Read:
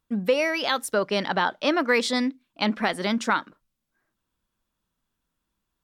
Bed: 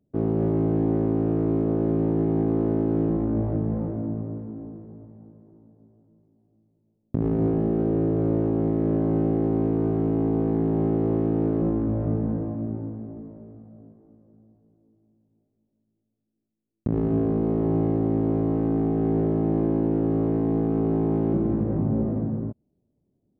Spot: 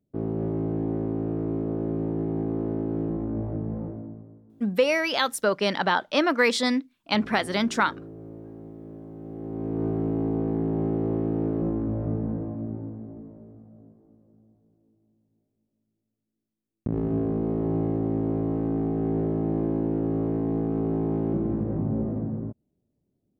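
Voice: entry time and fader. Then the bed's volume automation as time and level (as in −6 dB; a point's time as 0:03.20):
4.50 s, +0.5 dB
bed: 0:03.88 −5 dB
0:04.42 −19 dB
0:09.16 −19 dB
0:09.83 −3 dB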